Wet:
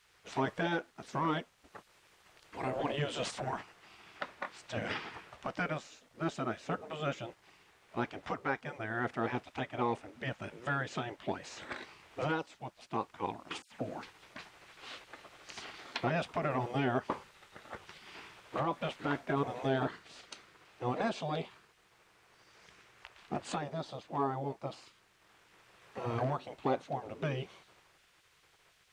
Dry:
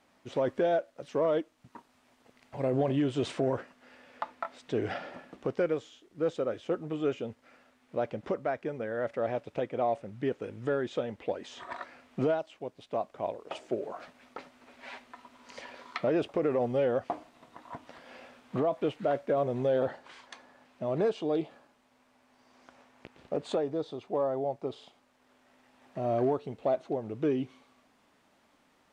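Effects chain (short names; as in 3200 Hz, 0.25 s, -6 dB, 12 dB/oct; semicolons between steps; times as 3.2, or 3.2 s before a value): 13.62–14.03 dispersion lows, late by 96 ms, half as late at 2100 Hz; spectral gate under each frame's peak -10 dB weak; gain +5 dB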